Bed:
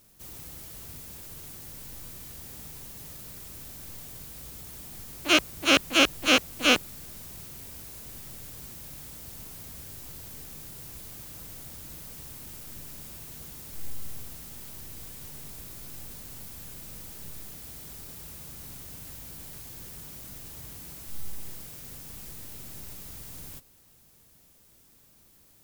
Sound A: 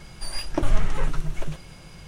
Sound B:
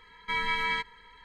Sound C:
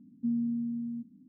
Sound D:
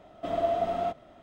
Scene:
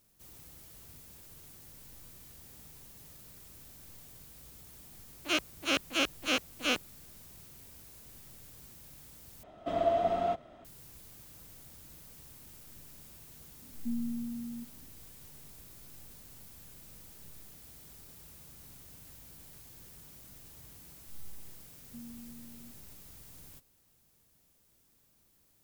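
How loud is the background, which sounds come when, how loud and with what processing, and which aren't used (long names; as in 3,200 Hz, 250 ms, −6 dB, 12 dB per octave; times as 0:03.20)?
bed −9.5 dB
0:09.43: overwrite with D −1 dB
0:13.62: mix in C −5 dB
0:21.70: mix in C −13 dB + parametric band 230 Hz −5 dB
not used: A, B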